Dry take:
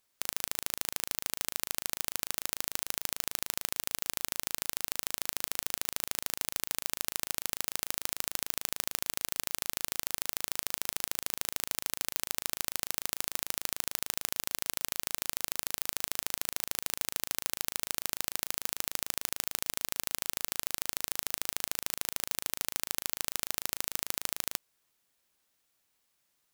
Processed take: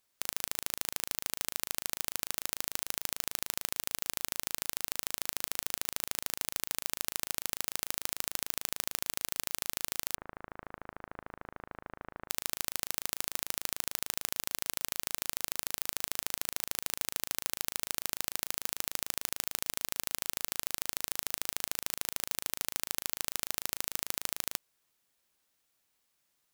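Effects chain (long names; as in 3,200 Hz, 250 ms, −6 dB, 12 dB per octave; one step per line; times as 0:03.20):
0:10.15–0:12.30: low-pass filter 1,600 Hz 24 dB per octave
level −1 dB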